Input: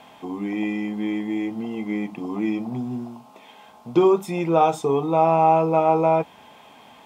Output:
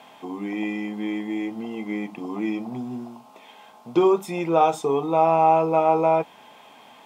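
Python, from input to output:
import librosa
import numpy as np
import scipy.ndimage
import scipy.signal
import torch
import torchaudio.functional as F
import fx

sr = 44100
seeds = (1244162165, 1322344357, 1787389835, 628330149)

y = fx.highpass(x, sr, hz=240.0, slope=6)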